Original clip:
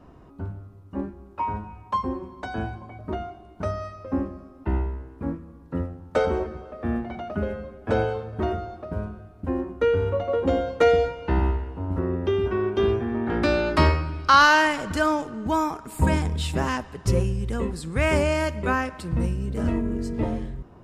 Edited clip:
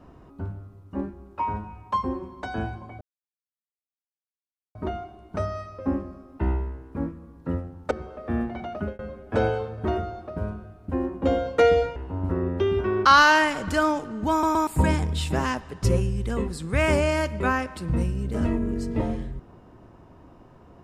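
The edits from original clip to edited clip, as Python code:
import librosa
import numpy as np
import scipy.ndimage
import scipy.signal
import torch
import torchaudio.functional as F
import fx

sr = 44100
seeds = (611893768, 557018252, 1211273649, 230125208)

y = fx.edit(x, sr, fx.insert_silence(at_s=3.01, length_s=1.74),
    fx.cut(start_s=6.17, length_s=0.29),
    fx.fade_out_span(start_s=7.26, length_s=0.28, curve='qsin'),
    fx.cut(start_s=9.77, length_s=0.67),
    fx.cut(start_s=11.18, length_s=0.45),
    fx.cut(start_s=12.72, length_s=1.56),
    fx.stutter_over(start_s=15.54, slice_s=0.12, count=3), tone=tone)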